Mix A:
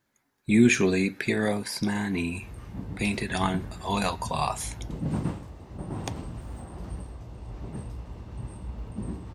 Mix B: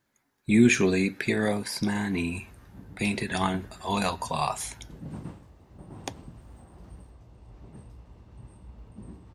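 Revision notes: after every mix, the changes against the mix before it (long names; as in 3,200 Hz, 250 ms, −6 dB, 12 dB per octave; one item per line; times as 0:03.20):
background −10.0 dB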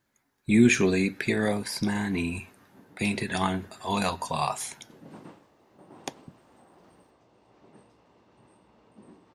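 background: add band-pass filter 310–7,100 Hz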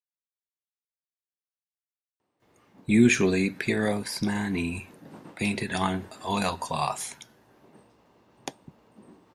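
speech: entry +2.40 s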